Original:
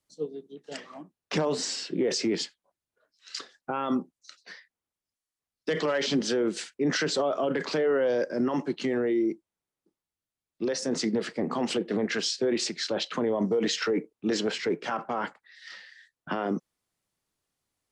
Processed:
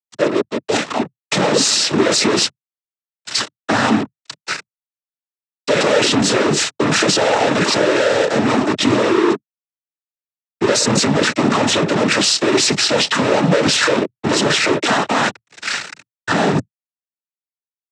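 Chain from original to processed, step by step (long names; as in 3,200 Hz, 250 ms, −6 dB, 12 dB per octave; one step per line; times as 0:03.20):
fuzz pedal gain 46 dB, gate −47 dBFS
cochlear-implant simulation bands 12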